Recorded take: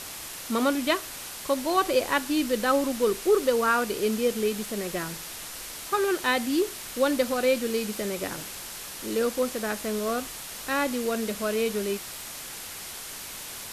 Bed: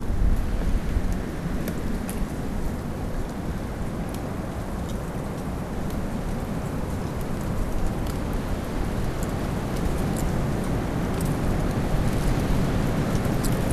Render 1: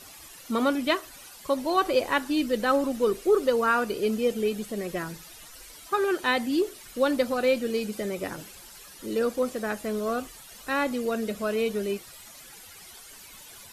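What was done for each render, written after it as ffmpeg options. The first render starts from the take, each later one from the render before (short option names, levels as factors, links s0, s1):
-af "afftdn=nr=13:nf=-39"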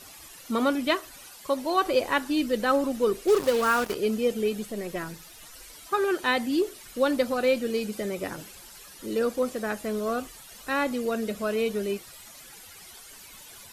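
-filter_complex "[0:a]asettb=1/sr,asplit=3[s0][s1][s2];[s0]atrim=end=1.344[s3];[s1]atrim=start=1.34:end=1.86,asetpts=PTS-STARTPTS,afade=t=in:d=0.004:c=qsin,afade=t=out:st=0.516:d=0.004:c=qsin,lowshelf=f=170:g=-6.5[s4];[s2]atrim=start=1.856[s5];[s3][s4]acrossfade=d=0.004:c1=hsin:c2=qsin[s6];[s6][s5]acrossfade=d=0.004:c1=qsin:c2=hsin,asplit=3[s7][s8][s9];[s7]afade=t=out:st=3.27:d=0.02[s10];[s8]acrusher=bits=4:mix=0:aa=0.5,afade=t=in:st=3.27:d=0.02,afade=t=out:st=3.94:d=0.02[s11];[s9]afade=t=in:st=3.94:d=0.02[s12];[s10][s11][s12]amix=inputs=3:normalize=0,asettb=1/sr,asplit=3[s13][s14][s15];[s13]atrim=end=4.674[s16];[s14]atrim=start=4.67:end=5.43,asetpts=PTS-STARTPTS,afade=t=in:d=0.004:c=qsin,afade=t=out:st=0.756:d=0.004:c=qsin,aeval=exprs='if(lt(val(0),0),0.708*val(0),val(0))':c=same[s17];[s15]atrim=start=5.426[s18];[s16][s17]acrossfade=d=0.004:c1=hsin:c2=qsin[s19];[s19][s18]acrossfade=d=0.004:c1=qsin:c2=hsin"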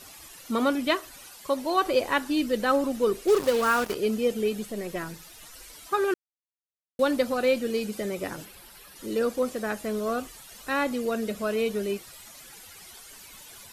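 -filter_complex "[0:a]asettb=1/sr,asplit=3[s0][s1][s2];[s0]atrim=end=8.454[s3];[s1]atrim=start=8.45:end=8.96,asetpts=PTS-STARTPTS,afade=t=in:d=0.004:c=qsin,afade=t=out:st=0.506:d=0.004:c=qsin,equalizer=f=6700:w=1.6:g=-8.5[s4];[s2]atrim=start=8.956[s5];[s3][s4]acrossfade=d=0.004:c1=hsin:c2=qsin[s6];[s6][s5]acrossfade=d=0.004:c1=qsin:c2=hsin,asplit=3[s7][s8][s9];[s7]atrim=end=6.14,asetpts=PTS-STARTPTS,afade=t=out:st=6.136:d=0.004:c=hsin[s10];[s8]atrim=start=6.14:end=6.99,asetpts=PTS-STARTPTS,volume=0[s11];[s9]atrim=start=6.99,asetpts=PTS-STARTPTS,afade=t=in:d=0.004:c=hsin[s12];[s10][s11][s12]concat=n=3:v=0:a=1"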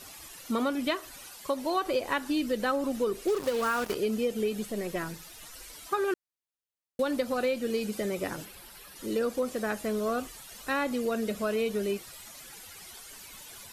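-af "acompressor=threshold=0.0562:ratio=5"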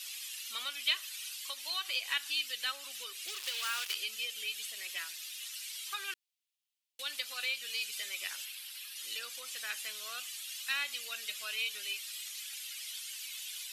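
-filter_complex "[0:a]highpass=f=2900:t=q:w=2,asplit=2[s0][s1];[s1]asoftclip=type=tanh:threshold=0.0237,volume=0.335[s2];[s0][s2]amix=inputs=2:normalize=0"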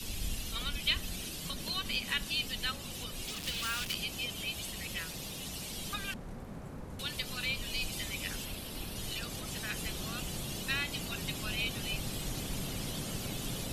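-filter_complex "[1:a]volume=0.158[s0];[0:a][s0]amix=inputs=2:normalize=0"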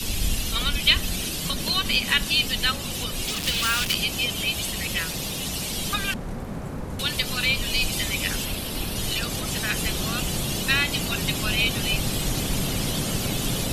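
-af "volume=3.98"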